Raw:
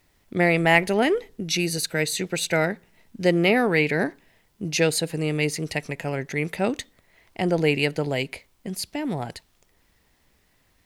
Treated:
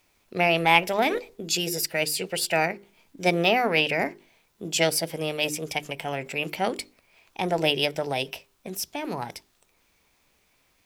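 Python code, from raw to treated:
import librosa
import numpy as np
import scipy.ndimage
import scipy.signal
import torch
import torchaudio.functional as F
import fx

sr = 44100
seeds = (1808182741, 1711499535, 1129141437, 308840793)

y = fx.low_shelf(x, sr, hz=230.0, db=-8.0)
y = fx.hum_notches(y, sr, base_hz=50, count=8)
y = fx.formant_shift(y, sr, semitones=3)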